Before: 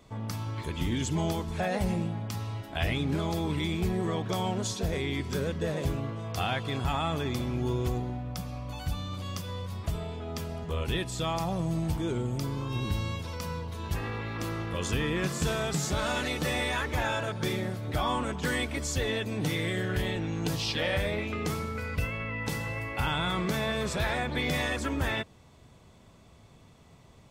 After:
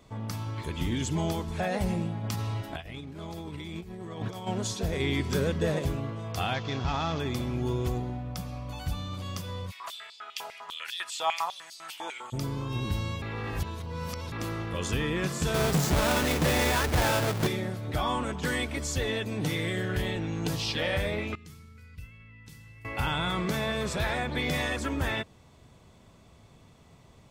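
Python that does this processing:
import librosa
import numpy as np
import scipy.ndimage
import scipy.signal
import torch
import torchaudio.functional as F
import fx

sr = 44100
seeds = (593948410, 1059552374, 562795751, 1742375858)

y = fx.over_compress(x, sr, threshold_db=-34.0, ratio=-0.5, at=(2.23, 4.46), fade=0.02)
y = fx.cvsd(y, sr, bps=32000, at=(6.54, 7.2))
y = fx.filter_held_highpass(y, sr, hz=10.0, low_hz=830.0, high_hz=4600.0, at=(9.7, 12.32), fade=0.02)
y = fx.halfwave_hold(y, sr, at=(15.54, 17.47))
y = fx.tone_stack(y, sr, knobs='6-0-2', at=(21.35, 22.85))
y = fx.edit(y, sr, fx.clip_gain(start_s=5.0, length_s=0.79, db=3.5),
    fx.reverse_span(start_s=13.22, length_s=1.1), tone=tone)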